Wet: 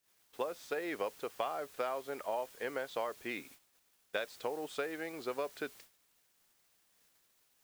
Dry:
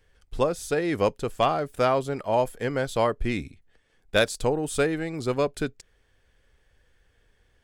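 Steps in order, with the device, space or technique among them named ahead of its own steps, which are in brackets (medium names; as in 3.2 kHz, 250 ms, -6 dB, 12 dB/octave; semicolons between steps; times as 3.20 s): baby monitor (band-pass 460–3600 Hz; compression 6:1, threshold -28 dBFS, peak gain reduction 11.5 dB; white noise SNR 17 dB; gate -50 dBFS, range -24 dB); trim -5 dB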